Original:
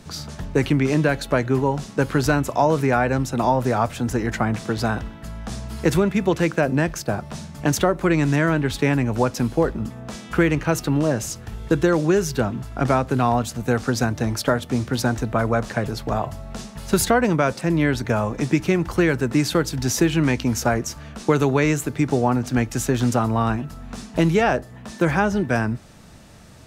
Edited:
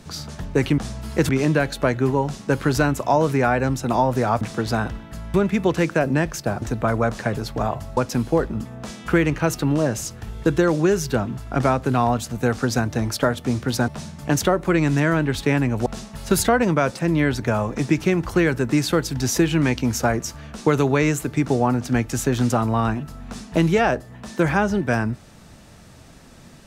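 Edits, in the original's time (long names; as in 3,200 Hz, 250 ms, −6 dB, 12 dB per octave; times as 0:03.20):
0:03.90–0:04.52: remove
0:05.45–0:05.96: move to 0:00.78
0:07.24–0:09.22: swap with 0:15.13–0:16.48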